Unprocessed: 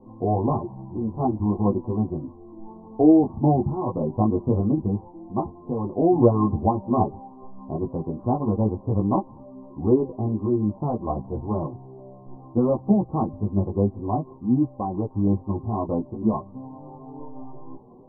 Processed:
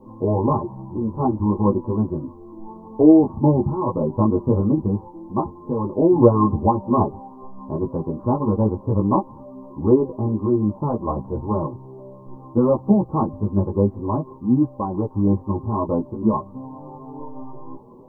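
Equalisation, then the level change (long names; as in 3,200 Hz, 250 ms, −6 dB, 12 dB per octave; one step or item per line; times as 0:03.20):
Butterworth band-reject 720 Hz, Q 5.1
tilt shelving filter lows −4.5 dB
+7.0 dB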